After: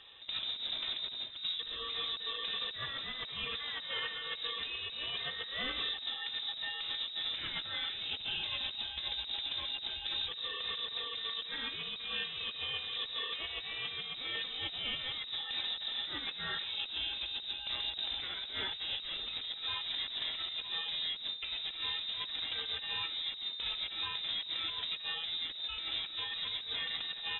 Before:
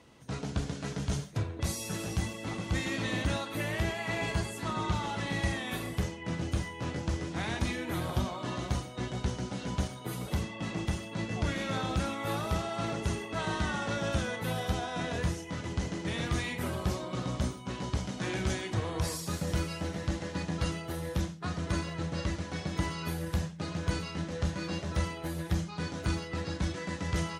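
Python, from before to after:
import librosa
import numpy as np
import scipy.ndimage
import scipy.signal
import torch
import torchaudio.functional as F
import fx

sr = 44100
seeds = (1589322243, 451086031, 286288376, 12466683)

y = 10.0 ** (-29.5 / 20.0) * np.tanh(x / 10.0 ** (-29.5 / 20.0))
y = fx.over_compress(y, sr, threshold_db=-38.0, ratio=-0.5)
y = fx.freq_invert(y, sr, carrier_hz=3800)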